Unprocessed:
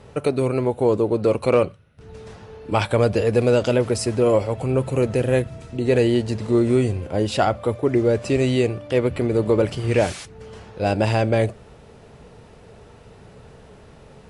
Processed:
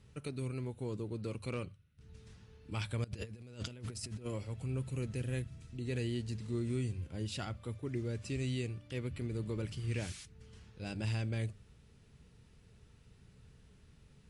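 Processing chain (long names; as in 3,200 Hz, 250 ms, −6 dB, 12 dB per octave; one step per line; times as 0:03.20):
guitar amp tone stack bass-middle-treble 6-0-2
mains-hum notches 50/100 Hz
0:03.04–0:04.26: compressor whose output falls as the input rises −45 dBFS, ratio −0.5
level +2 dB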